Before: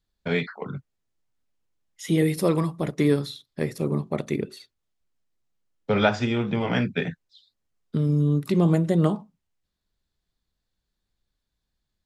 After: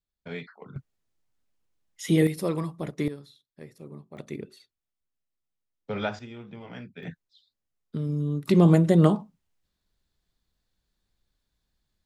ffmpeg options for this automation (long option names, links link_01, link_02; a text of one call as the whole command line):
ffmpeg -i in.wav -af "asetnsamples=nb_out_samples=441:pad=0,asendcmd='0.76 volume volume 0.5dB;2.27 volume volume -6dB;3.08 volume volume -18dB;4.17 volume volume -9.5dB;6.19 volume volume -17.5dB;7.03 volume volume -6.5dB;8.48 volume volume 2.5dB',volume=-12dB" out.wav